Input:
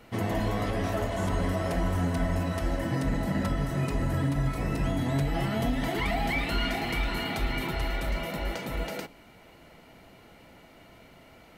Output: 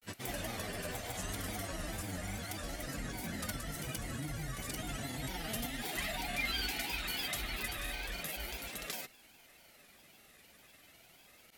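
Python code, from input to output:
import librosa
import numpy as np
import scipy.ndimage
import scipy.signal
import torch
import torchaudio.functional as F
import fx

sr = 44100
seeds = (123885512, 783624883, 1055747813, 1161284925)

y = scipy.signal.lfilter([1.0, -0.9], [1.0], x)
y = fx.notch(y, sr, hz=1000.0, q=9.9)
y = fx.granulator(y, sr, seeds[0], grain_ms=100.0, per_s=20.0, spray_ms=100.0, spread_st=3)
y = F.gain(torch.from_numpy(y), 6.5).numpy()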